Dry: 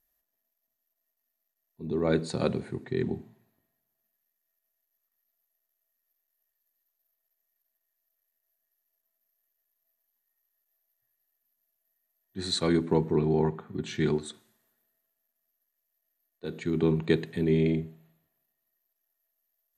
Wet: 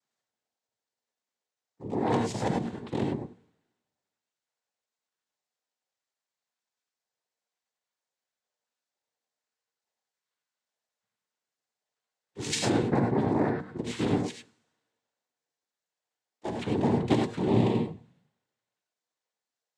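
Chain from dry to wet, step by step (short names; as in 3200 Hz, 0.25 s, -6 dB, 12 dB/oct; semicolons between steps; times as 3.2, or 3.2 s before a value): noise vocoder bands 6; non-linear reverb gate 0.12 s rising, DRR 2 dB; 16.45–17.03 three-band squash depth 40%; gain -1.5 dB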